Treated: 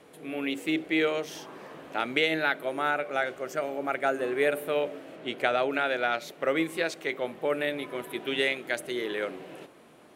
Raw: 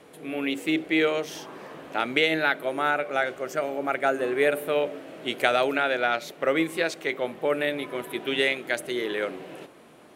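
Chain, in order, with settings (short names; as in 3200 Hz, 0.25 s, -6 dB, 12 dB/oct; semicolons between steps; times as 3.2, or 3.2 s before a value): 5.15–5.72 LPF 3900 Hz -> 2400 Hz 6 dB/oct; gain -3 dB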